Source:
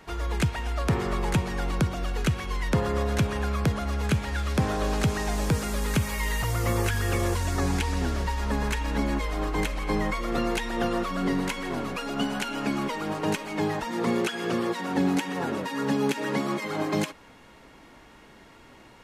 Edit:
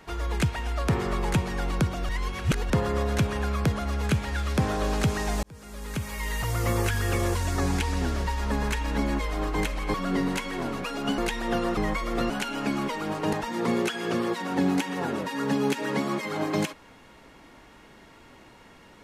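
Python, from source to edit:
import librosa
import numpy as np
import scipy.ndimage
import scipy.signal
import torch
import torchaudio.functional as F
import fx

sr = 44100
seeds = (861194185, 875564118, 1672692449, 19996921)

y = fx.edit(x, sr, fx.reverse_span(start_s=2.09, length_s=0.61),
    fx.fade_in_span(start_s=5.43, length_s=1.18),
    fx.swap(start_s=9.94, length_s=0.53, other_s=11.06, other_length_s=1.24),
    fx.cut(start_s=13.33, length_s=0.39), tone=tone)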